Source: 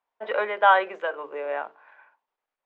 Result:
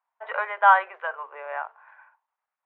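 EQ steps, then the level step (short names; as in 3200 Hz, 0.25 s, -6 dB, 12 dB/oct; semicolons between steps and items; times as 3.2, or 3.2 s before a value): ladder high-pass 690 Hz, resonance 25%; LPF 2300 Hz 12 dB/oct; air absorption 140 m; +7.5 dB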